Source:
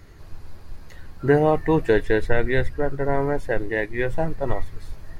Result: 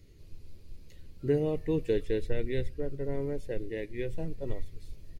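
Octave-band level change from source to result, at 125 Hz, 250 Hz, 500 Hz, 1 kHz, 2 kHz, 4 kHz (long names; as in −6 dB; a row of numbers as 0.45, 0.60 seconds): −9.0, −9.0, −10.0, −23.5, −19.5, −9.0 decibels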